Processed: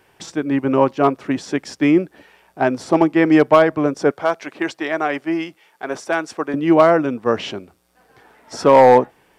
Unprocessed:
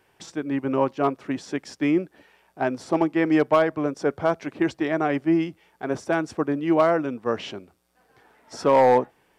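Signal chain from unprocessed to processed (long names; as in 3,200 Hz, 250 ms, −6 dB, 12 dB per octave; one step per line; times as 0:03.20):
0:04.11–0:06.54: high-pass filter 760 Hz 6 dB per octave
level +7 dB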